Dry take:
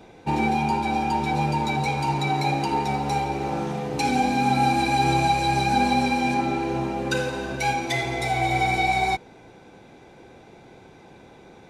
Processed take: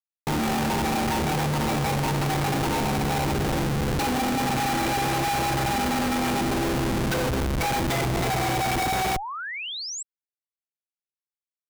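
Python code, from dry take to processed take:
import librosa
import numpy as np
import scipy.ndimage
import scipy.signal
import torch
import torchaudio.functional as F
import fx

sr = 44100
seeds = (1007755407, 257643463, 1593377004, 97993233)

y = fx.schmitt(x, sr, flips_db=-26.0)
y = fx.spec_paint(y, sr, seeds[0], shape='rise', start_s=9.14, length_s=0.89, low_hz=680.0, high_hz=8000.0, level_db=-33.0)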